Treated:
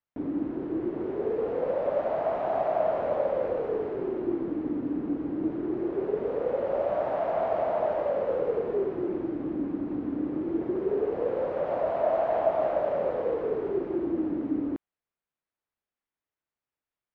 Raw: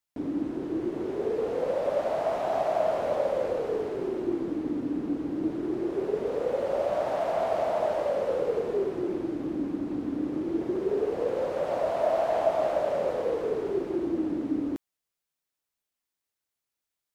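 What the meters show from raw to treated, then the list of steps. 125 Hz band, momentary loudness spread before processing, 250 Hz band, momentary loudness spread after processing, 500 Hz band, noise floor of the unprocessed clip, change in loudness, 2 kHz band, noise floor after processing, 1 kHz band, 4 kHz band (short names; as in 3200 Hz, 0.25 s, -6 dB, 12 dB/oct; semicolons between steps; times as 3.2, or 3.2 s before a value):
0.0 dB, 5 LU, 0.0 dB, 5 LU, 0.0 dB, under -85 dBFS, 0.0 dB, -2.0 dB, under -85 dBFS, 0.0 dB, n/a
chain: LPF 2100 Hz 12 dB/oct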